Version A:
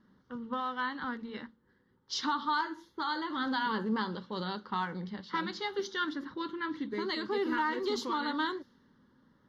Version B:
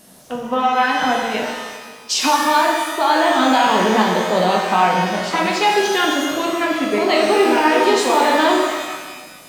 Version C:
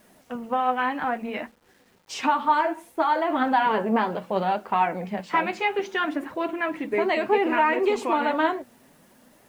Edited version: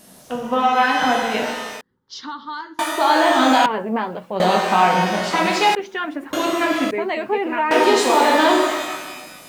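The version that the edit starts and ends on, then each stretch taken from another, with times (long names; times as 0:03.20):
B
0:01.81–0:02.79: punch in from A
0:03.66–0:04.40: punch in from C
0:05.75–0:06.33: punch in from C
0:06.91–0:07.71: punch in from C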